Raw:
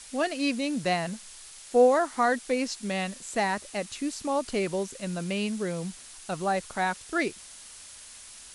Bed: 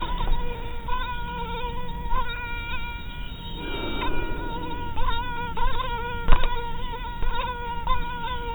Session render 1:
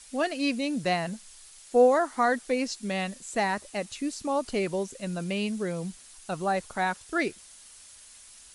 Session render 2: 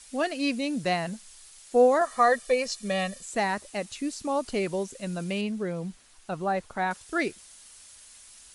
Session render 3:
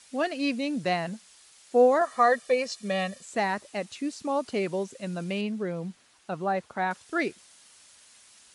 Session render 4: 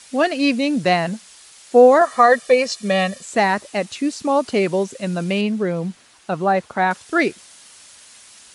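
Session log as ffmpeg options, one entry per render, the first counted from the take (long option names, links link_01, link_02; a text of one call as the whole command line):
ffmpeg -i in.wav -af "afftdn=noise_reduction=6:noise_floor=-47" out.wav
ffmpeg -i in.wav -filter_complex "[0:a]asettb=1/sr,asplit=3[link_01][link_02][link_03];[link_01]atrim=end=2.014[link_04];[link_02]atrim=start=2.01:end=3.25,asetpts=PTS-STARTPTS,afade=type=in:duration=0.004:curve=qsin,afade=type=out:start_time=1.236:duration=0.004:curve=qsin,aecho=1:1:1.7:0.87,atrim=end_sample=54684[link_05];[link_03]atrim=start=3.246[link_06];[link_04][link_05]acrossfade=duration=0.004:curve1=hsin:curve2=qsin[link_07];[link_07][link_06]acrossfade=duration=0.004:curve1=qsin:curve2=hsin,asettb=1/sr,asplit=3[link_08][link_09][link_10];[link_08]atrim=end=5.414[link_11];[link_09]atrim=start=5.41:end=6.91,asetpts=PTS-STARTPTS,afade=type=in:duration=0.004:curve=qsin,afade=type=out:start_time=1.496:duration=0.004:curve=qsin,highshelf=frequency=4200:gain=-11[link_12];[link_10]atrim=start=6.906[link_13];[link_11][link_12]acrossfade=duration=0.004:curve1=hsin:curve2=qsin[link_14];[link_14][link_13]acrossfade=duration=0.004:curve1=qsin:curve2=hsin" out.wav
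ffmpeg -i in.wav -af "highpass=120,highshelf=frequency=8700:gain=-12" out.wav
ffmpeg -i in.wav -af "volume=10dB,alimiter=limit=-3dB:level=0:latency=1" out.wav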